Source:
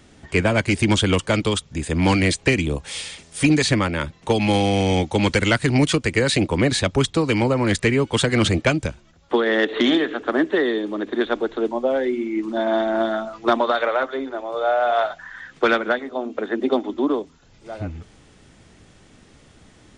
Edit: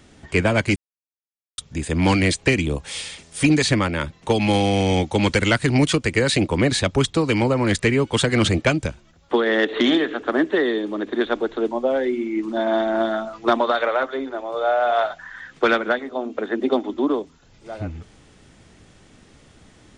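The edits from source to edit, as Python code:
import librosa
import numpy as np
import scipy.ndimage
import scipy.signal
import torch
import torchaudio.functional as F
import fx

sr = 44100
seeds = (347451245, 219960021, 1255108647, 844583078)

y = fx.edit(x, sr, fx.silence(start_s=0.76, length_s=0.82), tone=tone)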